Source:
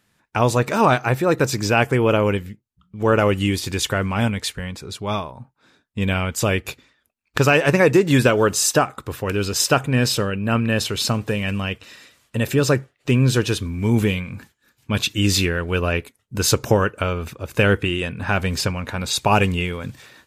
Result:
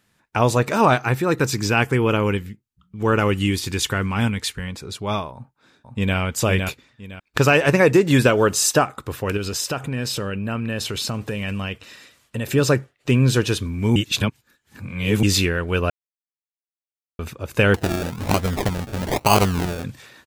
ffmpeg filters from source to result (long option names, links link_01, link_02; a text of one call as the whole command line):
ffmpeg -i in.wav -filter_complex "[0:a]asettb=1/sr,asplit=3[link_01][link_02][link_03];[link_01]atrim=end=1.024[link_04];[link_02]atrim=start=1.02:end=4.68,asetpts=PTS-STARTPTS,afade=type=in:duration=0.004:curve=qsin,afade=type=out:start_time=3.656:duration=0.004:curve=qsin,equalizer=frequency=610:width=2.7:gain=-8[link_05];[link_03]atrim=start=4.676[link_06];[link_04][link_05]acrossfade=duration=0.004:curve1=hsin:curve2=qsin[link_07];[link_07][link_06]acrossfade=duration=0.004:curve1=qsin:curve2=hsin,asplit=2[link_08][link_09];[link_09]afade=type=in:start_time=5.33:duration=0.01,afade=type=out:start_time=6.17:duration=0.01,aecho=0:1:510|1020|1530:0.630957|0.157739|0.0394348[link_10];[link_08][link_10]amix=inputs=2:normalize=0,asettb=1/sr,asplit=3[link_11][link_12][link_13];[link_11]atrim=end=9.374[link_14];[link_12]atrim=start=9.37:end=12.5,asetpts=PTS-STARTPTS,afade=type=in:duration=0.004:curve=qsin,afade=type=out:start_time=3.126:duration=0.004:curve=qsin,acompressor=threshold=-23dB:ratio=3:attack=3.2:release=140:knee=1:detection=peak[link_15];[link_13]atrim=start=12.496[link_16];[link_14][link_15]acrossfade=duration=0.004:curve1=hsin:curve2=qsin[link_17];[link_17][link_16]acrossfade=duration=0.004:curve1=qsin:curve2=hsin,asettb=1/sr,asplit=3[link_18][link_19][link_20];[link_18]atrim=end=17.744[link_21];[link_19]atrim=start=17.74:end=19.84,asetpts=PTS-STARTPTS,afade=type=in:duration=0.004:curve=qsin,afade=type=out:start_time=2.096:duration=0.004:curve=qsin,acrusher=samples=34:mix=1:aa=0.000001:lfo=1:lforange=20.4:lforate=1.1[link_22];[link_20]atrim=start=19.836[link_23];[link_21][link_22]acrossfade=duration=0.004:curve1=hsin:curve2=qsin[link_24];[link_24][link_23]acrossfade=duration=0.004:curve1=qsin:curve2=hsin,asplit=5[link_25][link_26][link_27][link_28][link_29];[link_25]atrim=end=13.962[link_30];[link_26]atrim=start=13.958:end=15.232,asetpts=PTS-STARTPTS,areverse[link_31];[link_27]atrim=start=15.228:end=15.9,asetpts=PTS-STARTPTS,afade=type=out:start_time=0.668:duration=0.004:curve=hsin[link_32];[link_28]atrim=start=15.9:end=17.19,asetpts=PTS-STARTPTS,volume=0[link_33];[link_29]atrim=start=17.19,asetpts=PTS-STARTPTS,afade=type=in:duration=0.004:curve=hsin[link_34];[link_30][link_31]acrossfade=duration=0.004:curve1=hsin:curve2=hsin[link_35];[link_32][link_33][link_34]concat=n=3:v=0:a=1[link_36];[link_35][link_36]acrossfade=duration=0.004:curve1=hsin:curve2=hsin" out.wav